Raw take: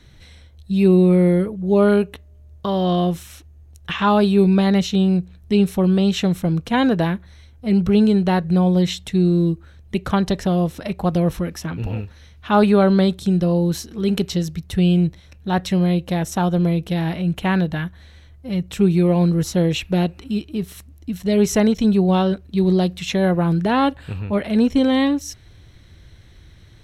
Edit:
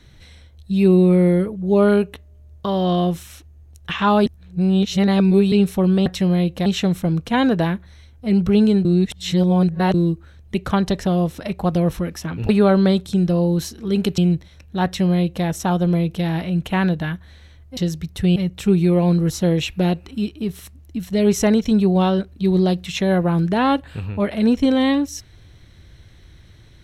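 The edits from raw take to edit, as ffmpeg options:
-filter_complex "[0:a]asplit=11[s0][s1][s2][s3][s4][s5][s6][s7][s8][s9][s10];[s0]atrim=end=4.262[s11];[s1]atrim=start=4.258:end=5.522,asetpts=PTS-STARTPTS,areverse[s12];[s2]atrim=start=5.518:end=6.062[s13];[s3]atrim=start=15.568:end=16.172[s14];[s4]atrim=start=6.058:end=8.252[s15];[s5]atrim=start=8.248:end=9.342,asetpts=PTS-STARTPTS,areverse[s16];[s6]atrim=start=9.338:end=11.892[s17];[s7]atrim=start=12.618:end=14.312[s18];[s8]atrim=start=14.898:end=18.492[s19];[s9]atrim=start=14.308:end=14.902[s20];[s10]atrim=start=18.488[s21];[s11][s12]acrossfade=d=0.004:c1=hsin:c2=hsin[s22];[s22][s13]acrossfade=d=0.004:c1=hsin:c2=hsin[s23];[s23][s14]acrossfade=d=0.004:c1=hsin:c2=hsin[s24];[s24][s15]acrossfade=d=0.004:c1=hsin:c2=hsin[s25];[s25][s16]acrossfade=d=0.004:c1=hsin:c2=hsin[s26];[s26][s17]acrossfade=d=0.004:c1=hsin:c2=hsin[s27];[s27][s18]acrossfade=d=0.004:c1=hsin:c2=hsin[s28];[s28][s19]acrossfade=d=0.004:c1=hsin:c2=hsin[s29];[s29][s20]acrossfade=d=0.004:c1=hsin:c2=hsin[s30];[s30][s21]acrossfade=d=0.004:c1=hsin:c2=hsin"

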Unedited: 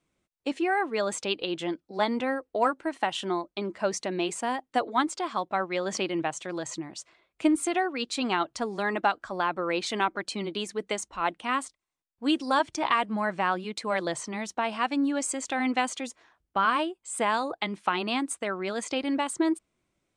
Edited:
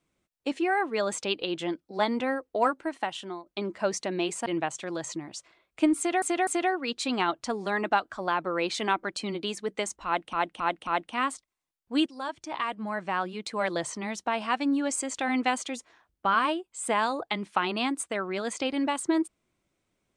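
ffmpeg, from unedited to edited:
-filter_complex "[0:a]asplit=9[s0][s1][s2][s3][s4][s5][s6][s7][s8];[s0]atrim=end=3.46,asetpts=PTS-STARTPTS,afade=t=out:st=2.76:d=0.7:silence=0.223872[s9];[s1]atrim=start=3.46:end=4.462,asetpts=PTS-STARTPTS,afade=t=in:d=0.004:c=hsin:silence=0.223872[s10];[s2]atrim=start=6.078:end=7.842[s11];[s3]atrim=start=7.588:end=7.842[s12];[s4]atrim=start=7.588:end=11.452[s13];[s5]atrim=start=11.178:end=11.452[s14];[s6]atrim=start=11.178:end=11.452[s15];[s7]atrim=start=11.178:end=12.37,asetpts=PTS-STARTPTS,afade=t=out:st=1.188:d=0.004:c=hsin:silence=0.211349[s16];[s8]atrim=start=12.37,asetpts=PTS-STARTPTS,afade=t=in:d=1.67:silence=0.211349[s17];[s9][s10]concat=n=2:v=0:a=1[s18];[s18][s11]acrossfade=d=0.004:c1=hsin:c2=hsin[s19];[s19][s12]acrossfade=d=0.004:c1=hsin:c2=hsin[s20];[s20][s13]acrossfade=d=0.004:c1=hsin:c2=hsin[s21];[s21][s14]acrossfade=d=0.004:c1=hsin:c2=hsin[s22];[s22][s15]acrossfade=d=0.004:c1=hsin:c2=hsin[s23];[s16][s17]concat=n=2:v=0:a=1[s24];[s23][s24]acrossfade=d=0.004:c1=hsin:c2=hsin"

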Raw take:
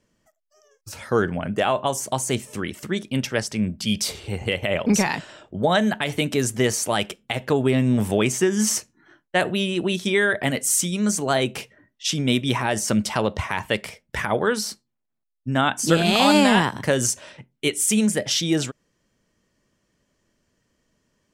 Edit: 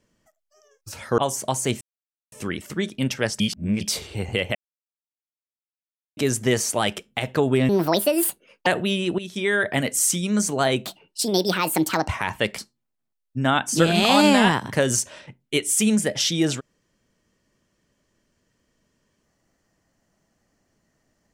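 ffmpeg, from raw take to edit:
-filter_complex "[0:a]asplit=13[s0][s1][s2][s3][s4][s5][s6][s7][s8][s9][s10][s11][s12];[s0]atrim=end=1.182[s13];[s1]atrim=start=1.818:end=2.45,asetpts=PTS-STARTPTS,afade=t=out:st=0.628:d=0.004:c=hsin,apad=pad_dur=0.51[s14];[s2]atrim=start=2.45:end=3.532,asetpts=PTS-STARTPTS,afade=t=in:d=0.004:c=hsin[s15];[s3]atrim=start=3.528:end=3.942,asetpts=PTS-STARTPTS,areverse[s16];[s4]atrim=start=3.938:end=4.68,asetpts=PTS-STARTPTS,afade=t=out:st=0.738:d=0.004:c=hsin[s17];[s5]atrim=start=4.68:end=6.3,asetpts=PTS-STARTPTS,volume=0[s18];[s6]atrim=start=6.3:end=7.824,asetpts=PTS-STARTPTS,afade=t=in:d=0.004:c=hsin[s19];[s7]atrim=start=7.82:end=9.36,asetpts=PTS-STARTPTS,asetrate=69678,aresample=44100[s20];[s8]atrim=start=9.356:end=9.88,asetpts=PTS-STARTPTS,afade=t=out:st=0.52:d=0.004:c=hsin:silence=0.211349[s21];[s9]atrim=start=9.88:end=11.554,asetpts=PTS-STARTPTS,afade=t=in:d=0.46:silence=0.211349[s22];[s10]atrim=start=11.55:end=13.38,asetpts=PTS-STARTPTS,asetrate=65709,aresample=44100,atrim=end_sample=54163,asetpts=PTS-STARTPTS[s23];[s11]atrim=start=13.376:end=13.882[s24];[s12]atrim=start=14.688[s25];[s14][s15]concat=n=2:v=0:a=1[s26];[s13][s26]acrossfade=d=0.004:c1=hsin:c2=hsin[s27];[s27][s16]acrossfade=d=0.004:c1=hsin:c2=hsin[s28];[s17][s18][s19]concat=n=3:v=0:a=1[s29];[s28][s29]acrossfade=d=0.004:c1=hsin:c2=hsin[s30];[s30][s20]acrossfade=d=0.004:c1=hsin:c2=hsin[s31];[s21][s22]concat=n=2:v=0:a=1[s32];[s31][s32]acrossfade=d=0.004:c1=hsin:c2=hsin[s33];[s33][s23]acrossfade=d=0.004:c1=hsin:c2=hsin[s34];[s34][s24]acrossfade=d=0.004:c1=hsin:c2=hsin[s35];[s35][s25]acrossfade=d=0.004:c1=hsin:c2=hsin"

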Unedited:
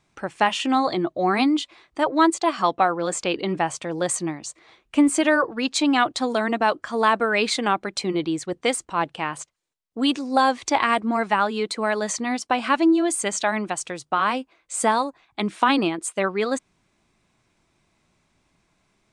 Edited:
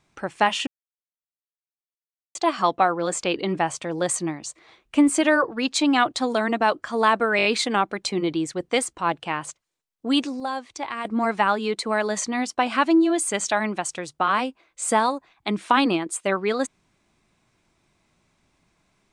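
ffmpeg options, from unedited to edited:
-filter_complex "[0:a]asplit=9[s0][s1][s2][s3][s4][s5][s6][s7][s8];[s0]atrim=end=0.67,asetpts=PTS-STARTPTS,afade=t=out:st=0.666:d=0.004:c=hsin[s9];[s1]atrim=start=0.67:end=2.35,asetpts=PTS-STARTPTS,volume=0[s10];[s2]atrim=start=2.35:end=7.392,asetpts=PTS-STARTPTS,afade=t=in:d=0.004:c=hsin[s11];[s3]atrim=start=7.368:end=7.392[s12];[s4]atrim=start=7.368:end=7.392[s13];[s5]atrim=start=7.368:end=7.392[s14];[s6]atrim=start=7.368:end=10.32,asetpts=PTS-STARTPTS,afade=t=out:st=2.802:d=0.15:c=log:silence=0.298538[s15];[s7]atrim=start=10.32:end=10.97,asetpts=PTS-STARTPTS,volume=0.299[s16];[s8]atrim=start=10.97,asetpts=PTS-STARTPTS,afade=t=in:d=0.15:c=log:silence=0.298538[s17];[s9][s10][s11]concat=n=3:v=0:a=1[s18];[s18][s12]acrossfade=d=0.004:c1=hsin:c2=hsin[s19];[s19][s13]acrossfade=d=0.004:c1=hsin:c2=hsin[s20];[s20][s14]acrossfade=d=0.004:c1=hsin:c2=hsin[s21];[s15][s16][s17]concat=n=3:v=0:a=1[s22];[s21][s22]acrossfade=d=0.004:c1=hsin:c2=hsin"

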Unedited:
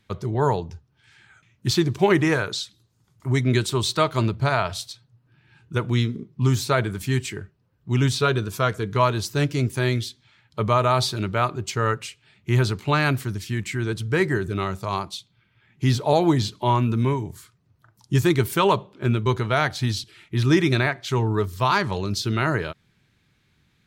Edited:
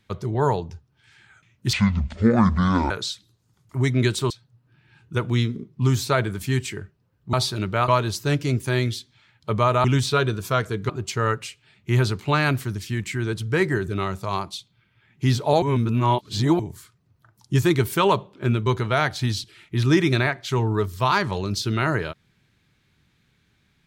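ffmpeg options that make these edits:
-filter_complex "[0:a]asplit=10[s0][s1][s2][s3][s4][s5][s6][s7][s8][s9];[s0]atrim=end=1.734[s10];[s1]atrim=start=1.73:end=2.41,asetpts=PTS-STARTPTS,asetrate=25578,aresample=44100,atrim=end_sample=51703,asetpts=PTS-STARTPTS[s11];[s2]atrim=start=2.406:end=3.812[s12];[s3]atrim=start=4.898:end=7.932[s13];[s4]atrim=start=10.938:end=11.492[s14];[s5]atrim=start=8.978:end=10.942[s15];[s6]atrim=start=7.928:end=8.982[s16];[s7]atrim=start=11.488:end=16.222[s17];[s8]atrim=start=16.218:end=17.192,asetpts=PTS-STARTPTS,areverse[s18];[s9]atrim=start=17.188[s19];[s10][s11]acrossfade=d=0.004:c1=hsin:c2=hsin[s20];[s20][s12]acrossfade=d=0.004:c1=hsin:c2=hsin[s21];[s21][s13]acrossfade=d=0.004:c1=hsin:c2=hsin[s22];[s22][s14]acrossfade=d=0.004:c1=hsin:c2=hsin[s23];[s23][s15]acrossfade=d=0.004:c1=hsin:c2=hsin[s24];[s24][s16]acrossfade=d=0.004:c1=hsin:c2=hsin[s25];[s25][s17]acrossfade=d=0.004:c1=hsin:c2=hsin[s26];[s26][s18]acrossfade=d=0.004:c1=hsin:c2=hsin[s27];[s27][s19]acrossfade=d=0.004:c1=hsin:c2=hsin"

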